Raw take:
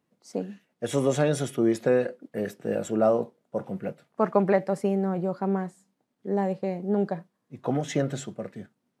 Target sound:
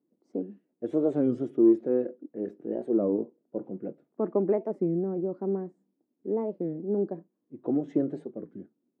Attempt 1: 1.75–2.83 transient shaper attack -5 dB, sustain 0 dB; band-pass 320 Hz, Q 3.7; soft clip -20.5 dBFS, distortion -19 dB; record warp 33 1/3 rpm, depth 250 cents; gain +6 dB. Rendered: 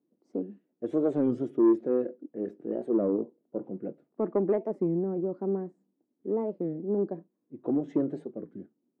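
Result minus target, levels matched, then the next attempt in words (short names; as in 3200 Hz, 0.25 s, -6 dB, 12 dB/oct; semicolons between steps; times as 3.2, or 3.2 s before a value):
soft clip: distortion +16 dB
1.75–2.83 transient shaper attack -5 dB, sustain 0 dB; band-pass 320 Hz, Q 3.7; soft clip -11 dBFS, distortion -35 dB; record warp 33 1/3 rpm, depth 250 cents; gain +6 dB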